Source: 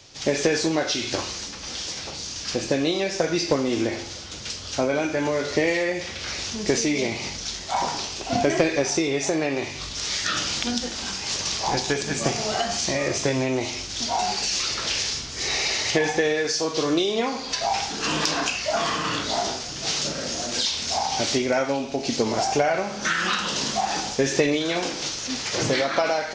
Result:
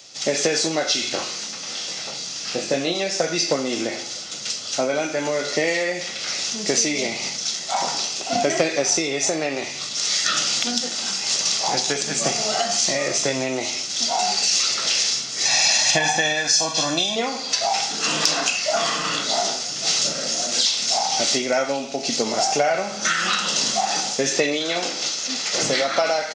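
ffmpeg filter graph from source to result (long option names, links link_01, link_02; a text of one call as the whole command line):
ffmpeg -i in.wav -filter_complex "[0:a]asettb=1/sr,asplit=3[link_01][link_02][link_03];[link_01]atrim=end=1.094[link_04];[link_02]atrim=start=1.09:end=2.95,asetpts=PTS-STARTPTS,afade=type=in:duration=0.004:curve=qsin,afade=type=out:start_time=1.856:duration=0.004:curve=qsin,acrossover=split=3700[link_05][link_06];[link_06]acompressor=threshold=-37dB:ratio=4:attack=1:release=60[link_07];[link_05][link_07]amix=inputs=2:normalize=0,asplit=2[link_08][link_09];[link_09]adelay=23,volume=-6dB[link_10];[link_08][link_10]amix=inputs=2:normalize=0,atrim=end_sample=82026[link_11];[link_03]atrim=start=2.946[link_12];[link_04][link_11]acrossfade=duration=0.004:curve1=hsin:curve2=qsin[link_13];[link_13][link_12]acrossfade=duration=0.004:curve1=qsin:curve2=hsin,asettb=1/sr,asplit=3[link_14][link_15][link_16];[link_14]atrim=end=15.454[link_17];[link_15]atrim=start=15.45:end=17.16,asetpts=PTS-STARTPTS,afade=type=in:duration=0.004:curve=qsin,afade=type=out:start_time=1.706:duration=0.004:curve=qsin,equalizer=frequency=1100:width_type=o:width=0.36:gain=2.5,aecho=1:1:1.2:0.97,atrim=end_sample=75411[link_18];[link_16]atrim=start=17.156[link_19];[link_17][link_18]acrossfade=duration=0.004:curve1=hsin:curve2=qsin[link_20];[link_20][link_19]acrossfade=duration=0.004:curve1=qsin:curve2=hsin,asettb=1/sr,asplit=3[link_21][link_22][link_23];[link_21]atrim=end=24.294[link_24];[link_22]atrim=start=24.29:end=25.54,asetpts=PTS-STARTPTS,afade=type=in:duration=0.004:curve=qsin,afade=type=out:start_time=1.246:duration=0.004:curve=qsin,highpass=160,lowpass=7600,bandreject=frequency=5700:width=26[link_25];[link_23]atrim=start=25.536[link_26];[link_24][link_25]acrossfade=duration=0.004:curve1=hsin:curve2=qsin[link_27];[link_27][link_26]acrossfade=duration=0.004:curve1=qsin:curve2=hsin,highpass=frequency=160:width=0.5412,highpass=frequency=160:width=1.3066,highshelf=frequency=4800:gain=10.5,aecho=1:1:1.5:0.31" out.wav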